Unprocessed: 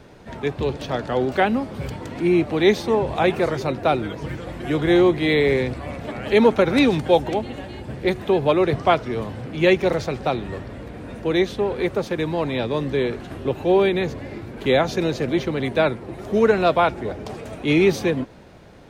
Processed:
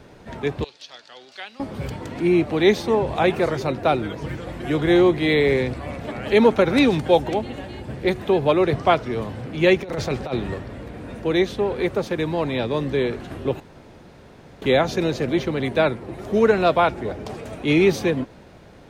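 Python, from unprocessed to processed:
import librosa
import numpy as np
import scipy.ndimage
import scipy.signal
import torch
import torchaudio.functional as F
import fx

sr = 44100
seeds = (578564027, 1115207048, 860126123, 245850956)

y = fx.bandpass_q(x, sr, hz=4700.0, q=1.8, at=(0.64, 1.6))
y = fx.over_compress(y, sr, threshold_db=-24.0, ratio=-0.5, at=(9.83, 10.54))
y = fx.edit(y, sr, fx.room_tone_fill(start_s=13.6, length_s=1.02), tone=tone)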